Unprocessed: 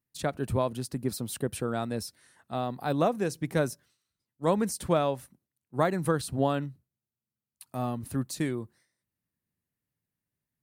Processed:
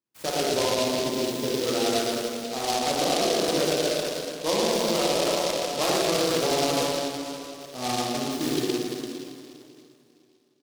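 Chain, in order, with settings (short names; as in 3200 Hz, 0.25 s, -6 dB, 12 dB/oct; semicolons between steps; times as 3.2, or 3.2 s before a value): HPF 320 Hz 12 dB/oct; high shelf 3000 Hz -11.5 dB; loudspeakers at several distances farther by 20 m -9 dB, 39 m -2 dB; plate-style reverb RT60 2.7 s, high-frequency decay 0.95×, DRR -7 dB; limiter -15.5 dBFS, peak gain reduction 7.5 dB; noise-modulated delay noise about 3900 Hz, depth 0.13 ms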